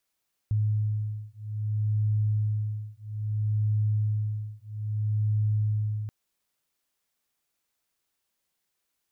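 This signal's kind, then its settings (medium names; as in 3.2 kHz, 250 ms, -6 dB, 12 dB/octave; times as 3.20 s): beating tones 106 Hz, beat 0.61 Hz, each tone -27.5 dBFS 5.58 s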